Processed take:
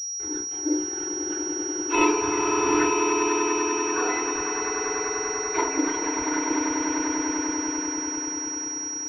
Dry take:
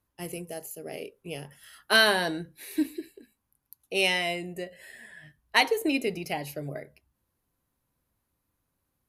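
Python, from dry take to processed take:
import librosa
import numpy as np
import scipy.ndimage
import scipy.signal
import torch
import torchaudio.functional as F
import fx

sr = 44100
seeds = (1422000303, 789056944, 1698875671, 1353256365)

y = fx.octave_mirror(x, sr, pivot_hz=2000.0)
y = fx.env_flanger(y, sr, rest_ms=3.1, full_db=-28.5)
y = fx.echo_swell(y, sr, ms=98, loudest=8, wet_db=-7)
y = fx.resample_bad(y, sr, factor=6, down='none', up='hold', at=(2.21, 2.83))
y = fx.rev_fdn(y, sr, rt60_s=0.4, lf_ratio=1.4, hf_ratio=0.35, size_ms=20.0, drr_db=-3.5)
y = np.sign(y) * np.maximum(np.abs(y) - 10.0 ** (-43.5 / 20.0), 0.0)
y = fx.pwm(y, sr, carrier_hz=5700.0)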